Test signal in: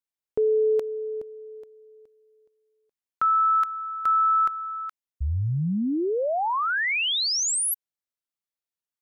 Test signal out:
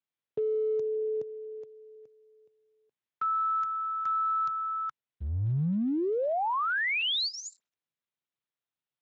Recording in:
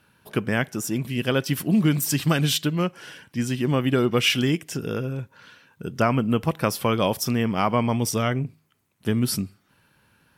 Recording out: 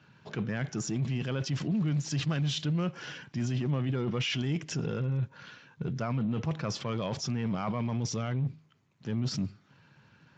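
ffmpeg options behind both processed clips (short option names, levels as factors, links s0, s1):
-af "equalizer=f=140:t=o:w=0.72:g=7.5,areverse,acompressor=threshold=0.0501:ratio=10:attack=0.22:release=47:knee=1:detection=peak,areverse" -ar 16000 -c:a libspeex -b:a 34k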